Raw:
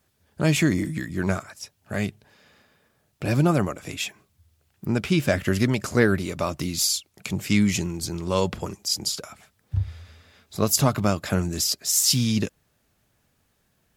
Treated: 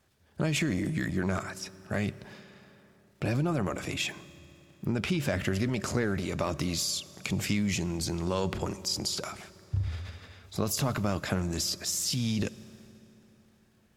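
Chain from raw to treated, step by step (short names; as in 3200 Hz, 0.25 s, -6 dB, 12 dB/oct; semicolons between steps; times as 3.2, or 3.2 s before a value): compressor, threshold -26 dBFS, peak gain reduction 12.5 dB; high shelf 10000 Hz -10.5 dB; transient shaper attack 0 dB, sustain +8 dB; reverb RT60 3.6 s, pre-delay 3 ms, DRR 17.5 dB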